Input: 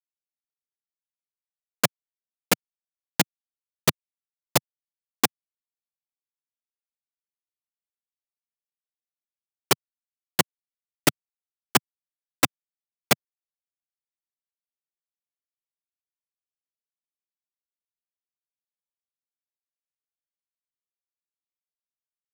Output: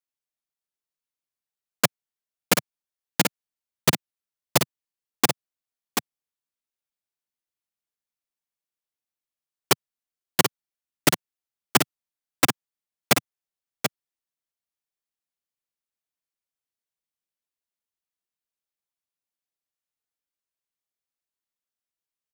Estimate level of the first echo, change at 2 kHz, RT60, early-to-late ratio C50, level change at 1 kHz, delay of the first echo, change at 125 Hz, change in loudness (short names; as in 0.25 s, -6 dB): -6.0 dB, +2.0 dB, none, none, +2.0 dB, 0.734 s, +2.0 dB, +1.0 dB